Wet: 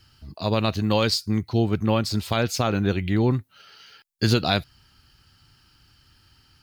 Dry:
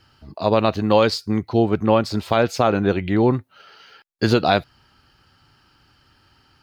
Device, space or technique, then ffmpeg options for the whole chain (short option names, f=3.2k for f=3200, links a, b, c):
smiley-face EQ: -af "lowshelf=f=110:g=4.5,equalizer=f=650:t=o:w=2.8:g=-8.5,highshelf=f=5.6k:g=7.5"